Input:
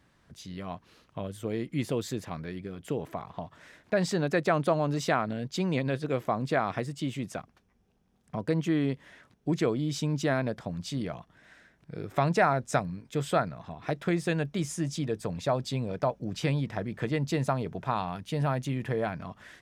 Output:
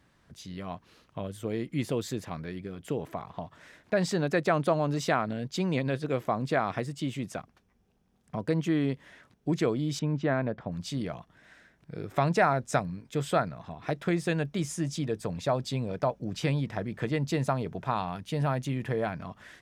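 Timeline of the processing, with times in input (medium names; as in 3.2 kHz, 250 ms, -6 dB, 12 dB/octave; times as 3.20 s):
9.99–10.72 s: low-pass 2.2 kHz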